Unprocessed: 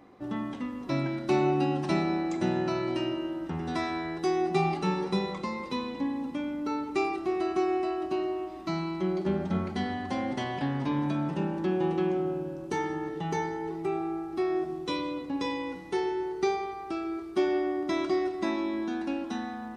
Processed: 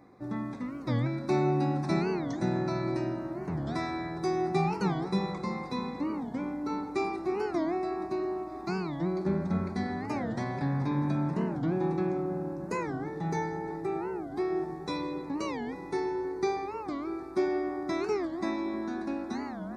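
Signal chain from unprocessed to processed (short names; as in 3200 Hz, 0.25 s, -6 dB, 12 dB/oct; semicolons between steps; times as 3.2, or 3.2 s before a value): Butterworth band-stop 3000 Hz, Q 2.7; bell 130 Hz +6.5 dB 0.83 oct; analogue delay 0.317 s, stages 4096, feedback 82%, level -14.5 dB; record warp 45 rpm, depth 250 cents; gain -2.5 dB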